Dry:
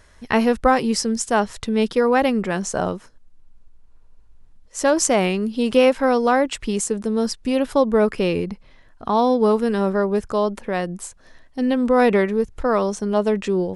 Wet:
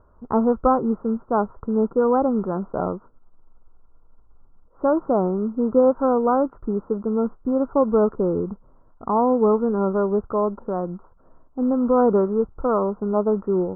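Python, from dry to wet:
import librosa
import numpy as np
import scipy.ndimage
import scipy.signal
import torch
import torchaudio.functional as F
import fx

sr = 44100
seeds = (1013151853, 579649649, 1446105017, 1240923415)

y = fx.mod_noise(x, sr, seeds[0], snr_db=16)
y = scipy.signal.sosfilt(scipy.signal.cheby1(6, 3, 1400.0, 'lowpass', fs=sr, output='sos'), y)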